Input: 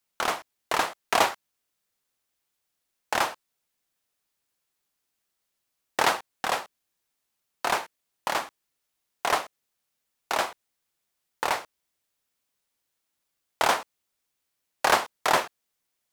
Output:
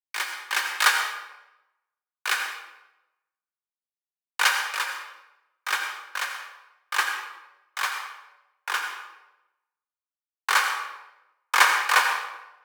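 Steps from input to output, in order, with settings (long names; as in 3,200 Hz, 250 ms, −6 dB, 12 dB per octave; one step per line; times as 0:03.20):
gliding playback speed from 141% → 114%
frequency shifter +320 Hz
notch comb filter 670 Hz
on a send at −2 dB: convolution reverb RT60 1.6 s, pre-delay 78 ms
on the sum: multiband upward and downward expander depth 70%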